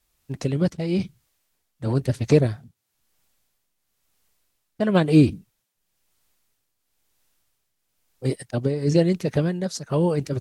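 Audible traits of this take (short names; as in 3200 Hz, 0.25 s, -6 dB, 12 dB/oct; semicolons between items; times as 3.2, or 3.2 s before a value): a quantiser's noise floor 12-bit, dither triangular; tremolo triangle 1 Hz, depth 70%; Vorbis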